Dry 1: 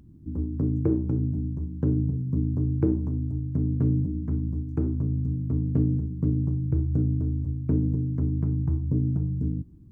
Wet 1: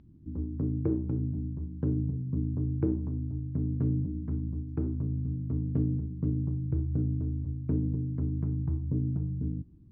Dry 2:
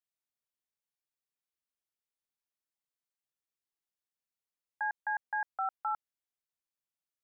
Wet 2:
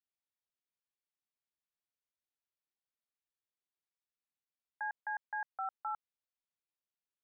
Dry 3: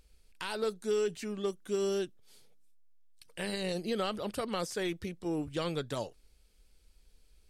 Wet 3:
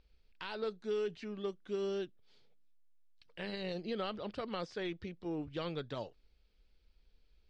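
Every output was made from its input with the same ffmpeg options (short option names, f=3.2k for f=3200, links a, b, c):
-af "lowpass=f=4.6k:w=0.5412,lowpass=f=4.6k:w=1.3066,volume=-5dB"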